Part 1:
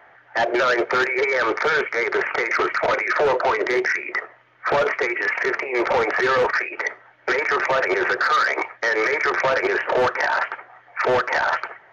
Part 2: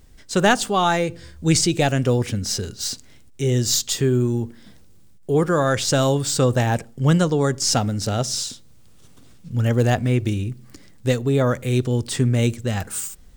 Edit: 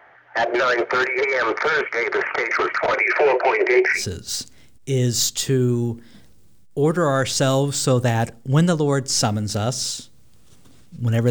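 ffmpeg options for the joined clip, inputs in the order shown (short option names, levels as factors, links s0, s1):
-filter_complex "[0:a]asettb=1/sr,asplit=3[s0][s1][s2];[s0]atrim=end=2.994[s3];[s1]atrim=start=2.99:end=4.05,asetpts=PTS-STARTPTS,afade=t=in:d=0.004:c=qsin,afade=t=out:st=1.056:d=0.004:c=qsin,highpass=180,equalizer=f=250:t=q:w=4:g=-8,equalizer=f=380:t=q:w=4:g=7,equalizer=f=770:t=q:w=4:g=4,equalizer=f=1200:t=q:w=4:g=-7,equalizer=f=2400:t=q:w=4:g=10,equalizer=f=3600:t=q:w=4:g=-8,lowpass=f=6000:w=0.5412,lowpass=f=6000:w=1.3066[s4];[s2]atrim=start=4.046[s5];[s3][s4]acrossfade=d=0.004:c1=hsin:c2=qsin[s6];[s6][s5]acrossfade=d=0.004:c1=qsin:c2=hsin,apad=whole_dur=11.3,atrim=end=11.3,atrim=end=4.05,asetpts=PTS-STARTPTS[s7];[1:a]atrim=start=2.43:end=9.82,asetpts=PTS-STARTPTS[s8];[s7][s8]acrossfade=d=0.14:c1=tri:c2=tri"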